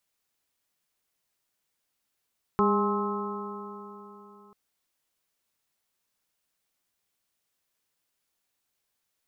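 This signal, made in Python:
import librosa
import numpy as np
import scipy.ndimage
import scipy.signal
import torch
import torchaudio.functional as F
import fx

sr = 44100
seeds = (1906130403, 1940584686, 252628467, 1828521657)

y = fx.additive_stiff(sr, length_s=1.94, hz=202.0, level_db=-24, upper_db=(0.5, -19, -6, -1.0, -3.0), decay_s=3.49, stiffness=0.0038)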